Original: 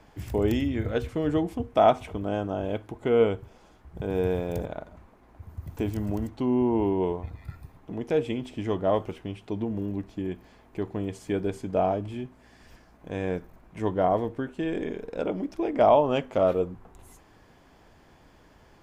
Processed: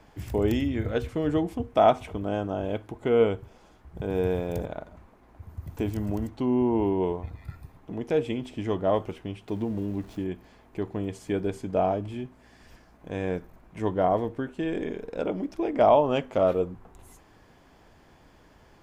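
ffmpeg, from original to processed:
ffmpeg -i in.wav -filter_complex "[0:a]asettb=1/sr,asplit=3[link_01][link_02][link_03];[link_01]atrim=end=9.484[link_04];[link_02]atrim=start=9.48:end=10.24,asetpts=PTS-STARTPTS,afade=type=in:duration=0.004:curve=qsin,afade=type=out:start_time=0.756:duration=0.004:curve=qsin,aeval=exprs='val(0)+0.5*0.00398*sgn(val(0))':channel_layout=same[link_05];[link_03]atrim=start=10.236[link_06];[link_04][link_05]acrossfade=duration=0.004:curve1=hsin:curve2=qsin[link_07];[link_07][link_06]acrossfade=duration=0.004:curve1=qsin:curve2=hsin" out.wav

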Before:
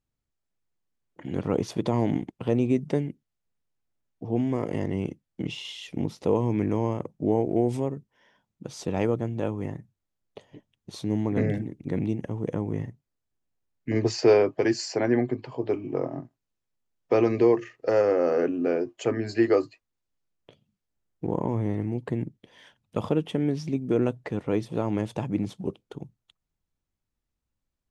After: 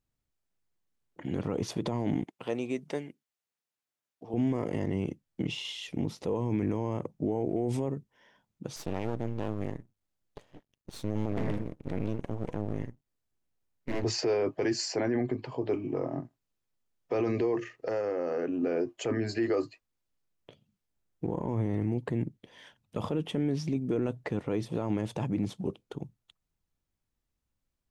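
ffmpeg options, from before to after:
ffmpeg -i in.wav -filter_complex "[0:a]asettb=1/sr,asplit=3[link_01][link_02][link_03];[link_01]atrim=end=2.244[link_04];[link_02]atrim=start=2.24:end=4.34,asetpts=PTS-STARTPTS,afade=type=in:duration=0.004:curve=qsin,afade=type=out:start_time=2.096:duration=0.004:curve=qsin,highpass=frequency=860:poles=1[link_05];[link_03]atrim=start=4.336[link_06];[link_04][link_05]acrossfade=duration=0.004:curve1=hsin:curve2=qsin[link_07];[link_07][link_06]acrossfade=duration=0.004:curve1=qsin:curve2=hsin,asettb=1/sr,asplit=3[link_08][link_09][link_10];[link_08]atrim=end=8.764[link_11];[link_09]atrim=start=8.76:end=14.04,asetpts=PTS-STARTPTS,afade=type=in:duration=0.004:curve=qsin,afade=type=out:start_time=5.276:duration=0.004:curve=qsin,aeval=exprs='max(val(0),0)':channel_layout=same[link_12];[link_10]atrim=start=14.036[link_13];[link_11][link_12]acrossfade=duration=0.004:curve1=hsin:curve2=qsin[link_14];[link_14][link_13]acrossfade=duration=0.004:curve1=qsin:curve2=hsin,asettb=1/sr,asplit=3[link_15][link_16][link_17];[link_15]atrim=end=17.744[link_18];[link_16]atrim=start=17.74:end=18.63,asetpts=PTS-STARTPTS,afade=type=in:duration=0.004:curve=qsin,afade=type=out:start_time=0.886:duration=0.004:curve=qsin,acompressor=threshold=-27dB:ratio=6:attack=3.2:release=140:knee=1:detection=peak[link_19];[link_17]atrim=start=18.626[link_20];[link_18][link_19]acrossfade=duration=0.004:curve1=hsin:curve2=qsin[link_21];[link_21][link_20]acrossfade=duration=0.004:curve1=qsin:curve2=hsin,alimiter=limit=-20.5dB:level=0:latency=1:release=21" out.wav

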